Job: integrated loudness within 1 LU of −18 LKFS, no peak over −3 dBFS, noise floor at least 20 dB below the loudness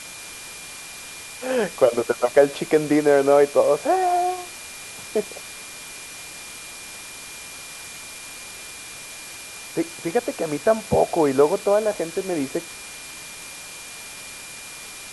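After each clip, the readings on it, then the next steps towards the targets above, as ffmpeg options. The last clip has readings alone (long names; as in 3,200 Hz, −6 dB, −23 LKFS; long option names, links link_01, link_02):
interfering tone 2,400 Hz; level of the tone −42 dBFS; background noise floor −38 dBFS; target noise floor −41 dBFS; integrated loudness −21.0 LKFS; sample peak −3.5 dBFS; target loudness −18.0 LKFS
→ -af "bandreject=frequency=2400:width=30"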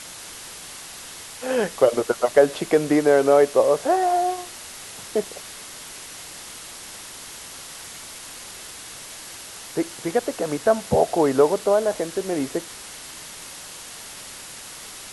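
interfering tone none found; background noise floor −39 dBFS; target noise floor −41 dBFS
→ -af "afftdn=noise_reduction=6:noise_floor=-39"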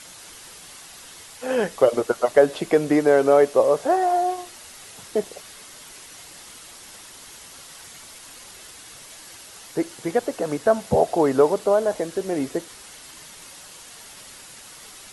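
background noise floor −44 dBFS; integrated loudness −21.0 LKFS; sample peak −3.5 dBFS; target loudness −18.0 LKFS
→ -af "volume=3dB,alimiter=limit=-3dB:level=0:latency=1"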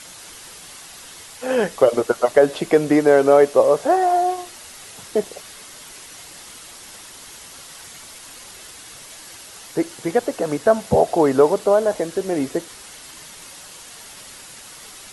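integrated loudness −18.5 LKFS; sample peak −3.0 dBFS; background noise floor −41 dBFS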